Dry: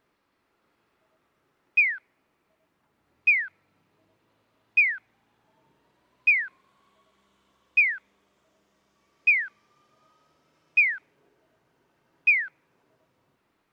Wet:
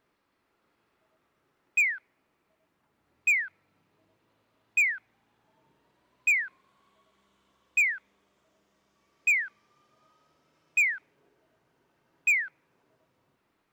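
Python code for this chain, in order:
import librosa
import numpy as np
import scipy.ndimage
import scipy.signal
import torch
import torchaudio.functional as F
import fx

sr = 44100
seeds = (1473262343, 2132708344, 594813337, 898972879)

y = np.clip(10.0 ** (17.0 / 20.0) * x, -1.0, 1.0) / 10.0 ** (17.0 / 20.0)
y = y * 10.0 ** (-2.0 / 20.0)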